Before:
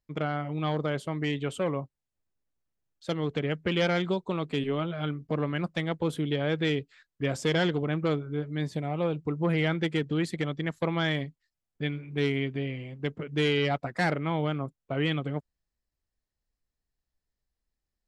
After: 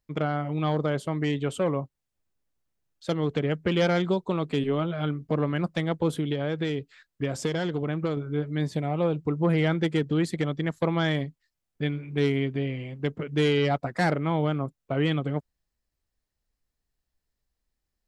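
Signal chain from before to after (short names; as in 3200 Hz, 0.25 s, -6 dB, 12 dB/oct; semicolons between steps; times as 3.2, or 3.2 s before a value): 6.13–8.17 compressor, threshold -27 dBFS, peak gain reduction 6.5 dB; dynamic EQ 2500 Hz, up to -5 dB, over -43 dBFS, Q 0.94; gain +3.5 dB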